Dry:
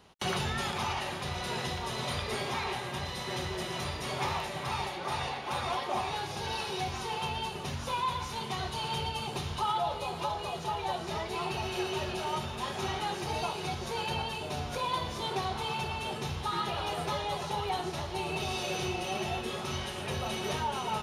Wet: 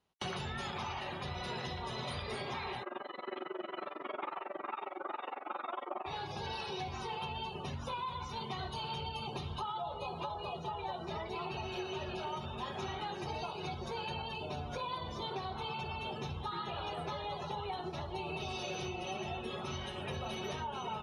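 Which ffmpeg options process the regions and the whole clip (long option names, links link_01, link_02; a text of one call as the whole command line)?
ffmpeg -i in.wav -filter_complex "[0:a]asettb=1/sr,asplit=3[link_01][link_02][link_03];[link_01]atrim=end=2.834[link_04];[link_02]atrim=start=2.83:end=6.06,asetpts=PTS-STARTPTS,afade=type=in:duration=0.004:curve=qsin,afade=type=out:start_time=3.226:duration=0.004:curve=qsin,highpass=frequency=240:width=0.5412,highpass=frequency=240:width=1.3066,equalizer=frequency=330:width_type=q:width=4:gain=9,equalizer=frequency=610:width_type=q:width=4:gain=5,equalizer=frequency=1300:width_type=q:width=4:gain=9,lowpass=frequency=3300:width=0.5412,lowpass=frequency=3300:width=1.3066,tremolo=f=22:d=0.947[link_05];[link_03]atrim=start=6.056[link_06];[link_04][link_05]acrossfade=duration=0.004:curve1=hsin:curve2=qsin[link_07];[link_07][link_06]acrossfade=duration=0.004:curve1=qsin:curve2=hsin,afftdn=noise_reduction=20:noise_floor=-43,acompressor=threshold=-34dB:ratio=6,volume=-2dB" out.wav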